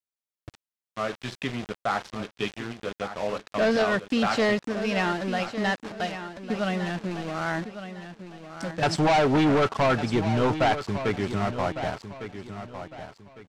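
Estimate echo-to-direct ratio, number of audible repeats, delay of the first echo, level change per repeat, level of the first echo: −10.5 dB, 3, 1,155 ms, −10.0 dB, −11.0 dB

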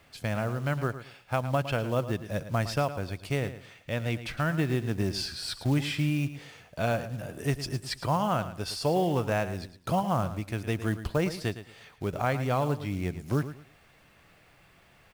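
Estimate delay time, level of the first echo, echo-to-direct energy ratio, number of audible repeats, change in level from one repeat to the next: 110 ms, −12.5 dB, −12.0 dB, 2, −12.0 dB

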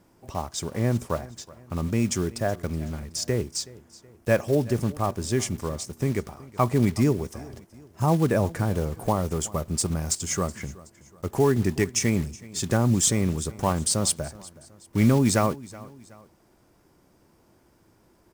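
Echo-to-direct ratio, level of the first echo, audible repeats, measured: −19.5 dB, −20.5 dB, 2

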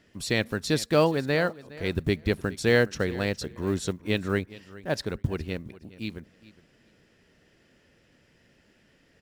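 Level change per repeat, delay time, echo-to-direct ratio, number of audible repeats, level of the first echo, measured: −15.0 dB, 415 ms, −19.0 dB, 2, −19.0 dB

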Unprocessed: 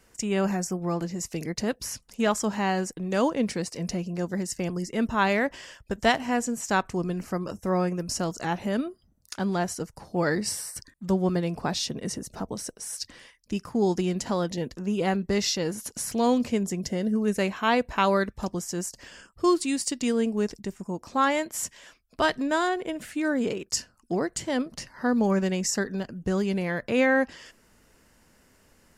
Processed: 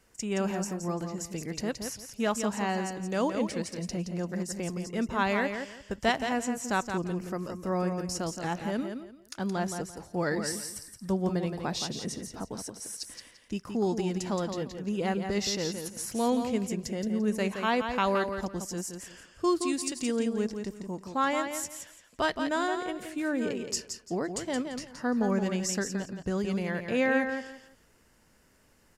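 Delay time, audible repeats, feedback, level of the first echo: 171 ms, 3, 23%, −7.0 dB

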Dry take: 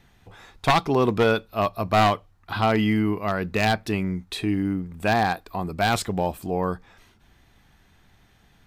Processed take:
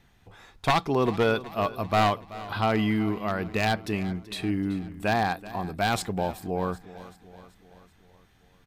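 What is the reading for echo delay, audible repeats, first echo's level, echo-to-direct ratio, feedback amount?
381 ms, 4, −17.0 dB, −15.5 dB, 55%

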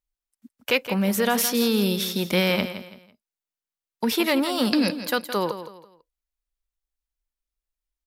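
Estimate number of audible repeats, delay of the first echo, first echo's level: 3, 166 ms, −11.5 dB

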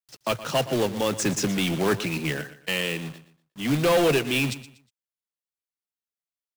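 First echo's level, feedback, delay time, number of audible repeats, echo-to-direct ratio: −15.0 dB, 29%, 120 ms, 2, −14.5 dB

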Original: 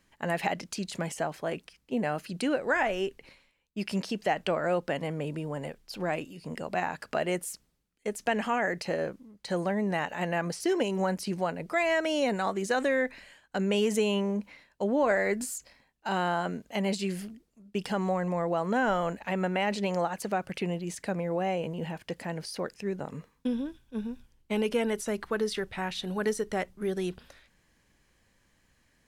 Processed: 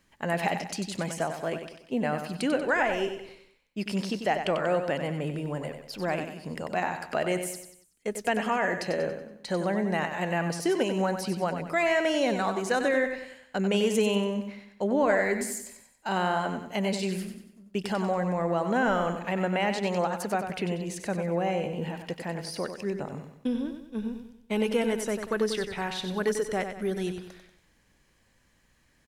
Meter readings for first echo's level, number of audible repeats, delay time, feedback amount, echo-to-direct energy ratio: −8.0 dB, 4, 94 ms, 43%, −7.0 dB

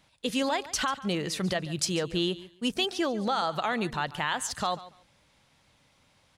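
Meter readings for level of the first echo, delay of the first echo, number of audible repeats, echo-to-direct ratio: −17.0 dB, 142 ms, 2, −17.0 dB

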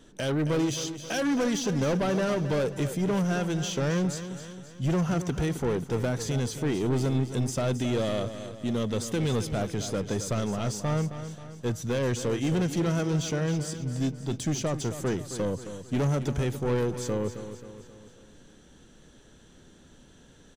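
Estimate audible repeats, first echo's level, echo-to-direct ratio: 4, −11.0 dB, −9.5 dB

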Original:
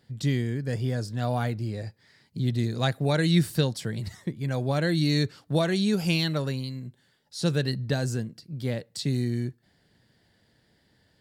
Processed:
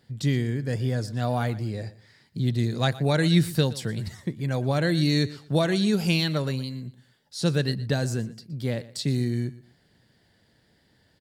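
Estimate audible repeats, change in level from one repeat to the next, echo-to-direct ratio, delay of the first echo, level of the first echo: 2, −11.5 dB, −17.5 dB, 119 ms, −18.0 dB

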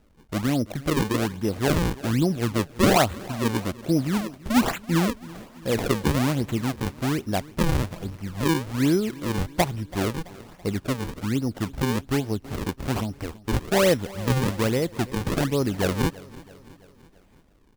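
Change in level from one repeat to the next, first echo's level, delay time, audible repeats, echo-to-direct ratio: −5.0 dB, −20.0 dB, 332 ms, 3, −18.5 dB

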